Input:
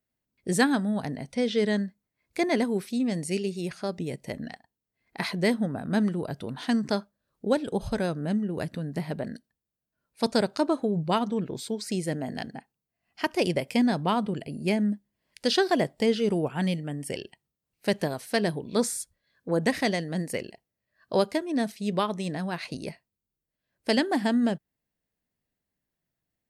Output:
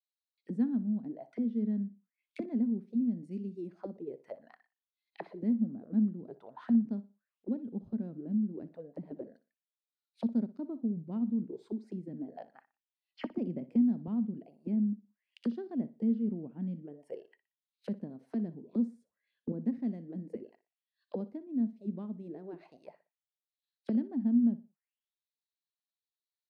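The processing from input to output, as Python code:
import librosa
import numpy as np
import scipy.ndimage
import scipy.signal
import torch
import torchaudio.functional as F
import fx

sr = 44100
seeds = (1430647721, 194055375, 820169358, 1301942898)

y = fx.high_shelf(x, sr, hz=2300.0, db=9.0, at=(3.24, 3.71))
y = fx.small_body(y, sr, hz=(220.0, 430.0), ring_ms=20, db=13, at=(19.01, 19.52))
y = fx.auto_wah(y, sr, base_hz=230.0, top_hz=4000.0, q=6.5, full_db=-26.0, direction='down')
y = fx.echo_feedback(y, sr, ms=60, feedback_pct=29, wet_db=-16.5)
y = fx.band_squash(y, sr, depth_pct=40, at=(13.35, 14.08))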